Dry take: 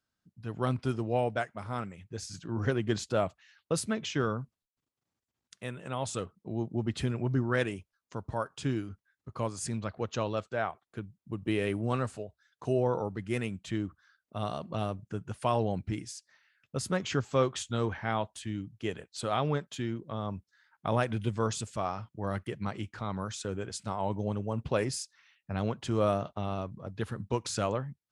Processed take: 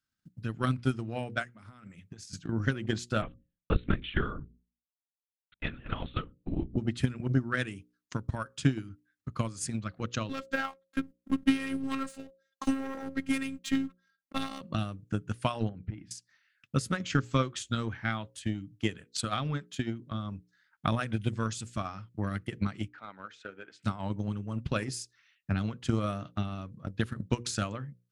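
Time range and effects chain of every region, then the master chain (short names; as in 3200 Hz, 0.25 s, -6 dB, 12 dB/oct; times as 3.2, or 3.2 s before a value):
1.52–2.33 HPF 96 Hz 24 dB/oct + compressor 12:1, threshold -43 dBFS
3.22–6.77 gate -53 dBFS, range -39 dB + notches 50/100/150/200/250/300 Hz + LPC vocoder at 8 kHz whisper
10.29–14.61 sample leveller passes 2 + robotiser 269 Hz + low shelf 210 Hz -5.5 dB
15.69–16.11 compressor 4:1, threshold -35 dBFS + air absorption 410 m
22.88–23.83 BPF 510–2200 Hz + bell 1100 Hz -8 dB 0.2 oct
whole clip: band shelf 620 Hz -9 dB; notches 60/120/180/240/300/360/420/480/540 Hz; transient shaper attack +12 dB, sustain -1 dB; gain -2 dB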